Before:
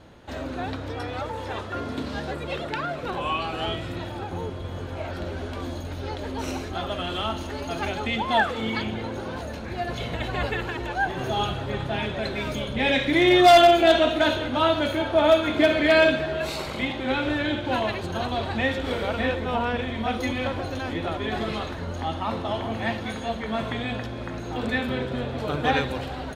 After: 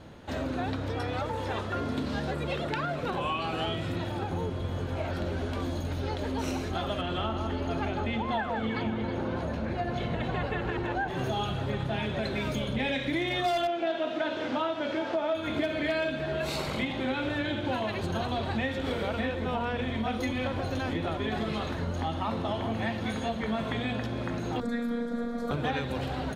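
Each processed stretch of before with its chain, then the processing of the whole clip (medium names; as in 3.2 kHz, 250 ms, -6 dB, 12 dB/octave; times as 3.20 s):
7.01–11.08 s: low-pass 2.5 kHz 6 dB/octave + echo whose repeats swap between lows and highs 160 ms, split 1.6 kHz, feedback 54%, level -5 dB
13.67–15.35 s: one-bit delta coder 64 kbps, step -27.5 dBFS + high-pass 250 Hz + distance through air 230 m
24.60–25.51 s: robot voice 236 Hz + static phaser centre 560 Hz, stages 8
whole clip: peaking EQ 160 Hz +5 dB 1.6 oct; hum notches 60/120/180/240/300/360 Hz; compression 6:1, threshold -27 dBFS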